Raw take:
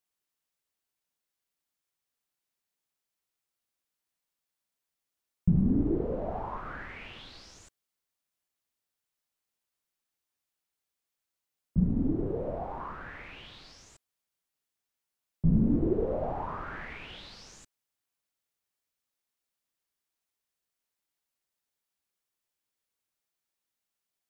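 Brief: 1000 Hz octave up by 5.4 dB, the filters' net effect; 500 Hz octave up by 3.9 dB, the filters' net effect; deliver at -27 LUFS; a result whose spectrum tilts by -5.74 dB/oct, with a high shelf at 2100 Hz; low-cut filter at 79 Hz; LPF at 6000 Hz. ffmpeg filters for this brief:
-af "highpass=79,lowpass=6k,equalizer=f=500:t=o:g=3.5,equalizer=f=1k:t=o:g=4,highshelf=f=2.1k:g=8,volume=3dB"

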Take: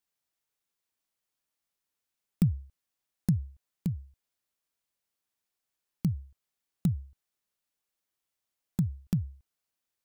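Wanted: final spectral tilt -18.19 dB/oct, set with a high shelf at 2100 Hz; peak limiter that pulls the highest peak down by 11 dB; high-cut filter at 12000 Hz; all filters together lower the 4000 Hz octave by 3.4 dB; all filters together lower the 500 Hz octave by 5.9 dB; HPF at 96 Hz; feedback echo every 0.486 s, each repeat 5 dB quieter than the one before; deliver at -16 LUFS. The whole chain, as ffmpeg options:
-af "highpass=96,lowpass=12k,equalizer=f=500:t=o:g=-9,highshelf=f=2.1k:g=3,equalizer=f=4k:t=o:g=-7.5,alimiter=level_in=2.5dB:limit=-24dB:level=0:latency=1,volume=-2.5dB,aecho=1:1:486|972|1458|1944|2430|2916|3402:0.562|0.315|0.176|0.0988|0.0553|0.031|0.0173,volume=24.5dB"

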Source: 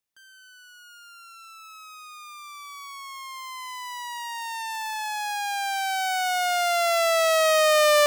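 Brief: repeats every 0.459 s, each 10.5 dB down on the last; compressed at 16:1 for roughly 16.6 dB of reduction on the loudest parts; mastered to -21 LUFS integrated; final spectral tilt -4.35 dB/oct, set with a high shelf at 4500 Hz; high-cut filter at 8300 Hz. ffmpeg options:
-af "lowpass=8.3k,highshelf=f=4.5k:g=6.5,acompressor=threshold=-32dB:ratio=16,aecho=1:1:459|918|1377:0.299|0.0896|0.0269,volume=14.5dB"

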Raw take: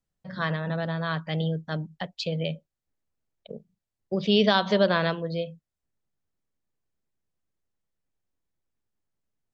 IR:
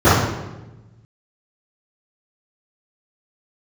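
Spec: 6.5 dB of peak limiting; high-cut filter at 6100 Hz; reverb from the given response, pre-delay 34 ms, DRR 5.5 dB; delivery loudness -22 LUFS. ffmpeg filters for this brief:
-filter_complex "[0:a]lowpass=6.1k,alimiter=limit=-15dB:level=0:latency=1,asplit=2[a][b];[1:a]atrim=start_sample=2205,adelay=34[c];[b][c]afir=irnorm=-1:irlink=0,volume=-34.5dB[d];[a][d]amix=inputs=2:normalize=0,volume=5dB"

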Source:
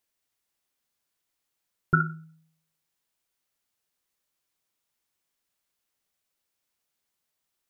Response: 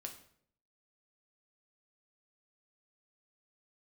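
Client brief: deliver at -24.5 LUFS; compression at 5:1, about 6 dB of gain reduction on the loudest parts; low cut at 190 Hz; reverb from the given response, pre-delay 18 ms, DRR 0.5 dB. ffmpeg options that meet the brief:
-filter_complex "[0:a]highpass=190,acompressor=threshold=-26dB:ratio=5,asplit=2[a][b];[1:a]atrim=start_sample=2205,adelay=18[c];[b][c]afir=irnorm=-1:irlink=0,volume=3dB[d];[a][d]amix=inputs=2:normalize=0,volume=9.5dB"

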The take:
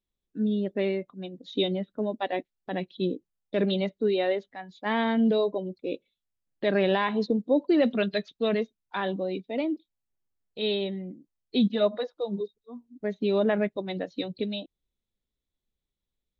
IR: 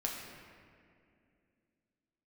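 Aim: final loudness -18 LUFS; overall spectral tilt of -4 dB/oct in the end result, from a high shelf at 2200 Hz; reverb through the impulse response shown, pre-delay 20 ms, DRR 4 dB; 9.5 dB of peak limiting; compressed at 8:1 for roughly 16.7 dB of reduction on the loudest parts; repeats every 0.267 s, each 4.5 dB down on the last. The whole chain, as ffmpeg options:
-filter_complex "[0:a]highshelf=f=2.2k:g=8,acompressor=threshold=-36dB:ratio=8,alimiter=level_in=7dB:limit=-24dB:level=0:latency=1,volume=-7dB,aecho=1:1:267|534|801|1068|1335|1602|1869|2136|2403:0.596|0.357|0.214|0.129|0.0772|0.0463|0.0278|0.0167|0.01,asplit=2[a][b];[1:a]atrim=start_sample=2205,adelay=20[c];[b][c]afir=irnorm=-1:irlink=0,volume=-6.5dB[d];[a][d]amix=inputs=2:normalize=0,volume=21dB"

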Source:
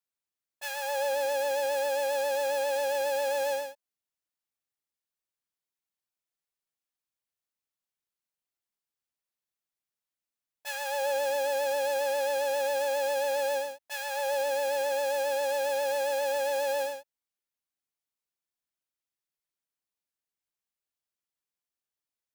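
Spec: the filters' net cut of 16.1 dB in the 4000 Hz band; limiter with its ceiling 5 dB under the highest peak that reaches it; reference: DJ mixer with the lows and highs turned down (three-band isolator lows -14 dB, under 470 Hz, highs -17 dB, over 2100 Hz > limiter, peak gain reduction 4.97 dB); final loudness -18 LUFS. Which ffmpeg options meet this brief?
-filter_complex "[0:a]equalizer=f=4k:t=o:g=-4,alimiter=level_in=1.5dB:limit=-24dB:level=0:latency=1,volume=-1.5dB,acrossover=split=470 2100:gain=0.2 1 0.141[a][b][c];[a][b][c]amix=inputs=3:normalize=0,volume=21dB,alimiter=limit=-11.5dB:level=0:latency=1"

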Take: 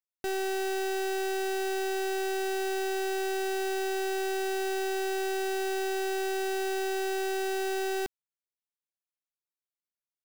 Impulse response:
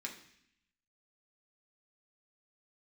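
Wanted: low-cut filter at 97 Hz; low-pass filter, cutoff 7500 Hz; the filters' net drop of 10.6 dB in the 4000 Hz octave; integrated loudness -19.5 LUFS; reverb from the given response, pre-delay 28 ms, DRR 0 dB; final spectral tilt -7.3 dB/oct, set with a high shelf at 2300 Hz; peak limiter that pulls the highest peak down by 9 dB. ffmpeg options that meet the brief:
-filter_complex "[0:a]highpass=97,lowpass=7.5k,highshelf=f=2.3k:g=-7,equalizer=f=4k:t=o:g=-6.5,alimiter=level_in=11.5dB:limit=-24dB:level=0:latency=1,volume=-11.5dB,asplit=2[a][b];[1:a]atrim=start_sample=2205,adelay=28[c];[b][c]afir=irnorm=-1:irlink=0,volume=1dB[d];[a][d]amix=inputs=2:normalize=0,volume=17.5dB"

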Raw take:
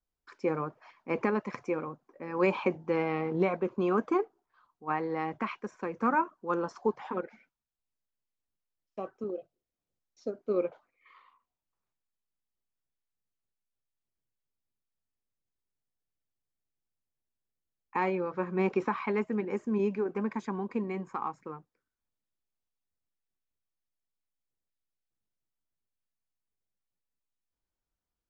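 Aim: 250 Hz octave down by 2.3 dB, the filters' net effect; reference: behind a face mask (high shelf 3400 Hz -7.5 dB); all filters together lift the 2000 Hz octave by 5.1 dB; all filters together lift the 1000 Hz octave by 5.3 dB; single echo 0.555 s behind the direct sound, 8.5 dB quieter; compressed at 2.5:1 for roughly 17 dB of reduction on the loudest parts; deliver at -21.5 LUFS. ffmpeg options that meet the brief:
-af "equalizer=f=250:t=o:g=-4,equalizer=f=1k:t=o:g=5.5,equalizer=f=2k:t=o:g=7,acompressor=threshold=-44dB:ratio=2.5,highshelf=f=3.4k:g=-7.5,aecho=1:1:555:0.376,volume=22dB"

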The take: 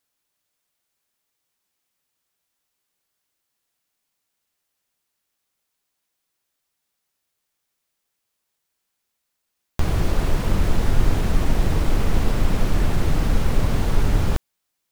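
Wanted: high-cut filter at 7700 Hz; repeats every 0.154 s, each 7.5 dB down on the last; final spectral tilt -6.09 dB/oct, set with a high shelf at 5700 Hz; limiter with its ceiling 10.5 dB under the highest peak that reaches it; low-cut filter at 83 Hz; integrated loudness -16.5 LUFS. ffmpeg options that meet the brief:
-af "highpass=83,lowpass=7.7k,highshelf=f=5.7k:g=-6.5,alimiter=limit=-20.5dB:level=0:latency=1,aecho=1:1:154|308|462|616|770:0.422|0.177|0.0744|0.0312|0.0131,volume=12.5dB"

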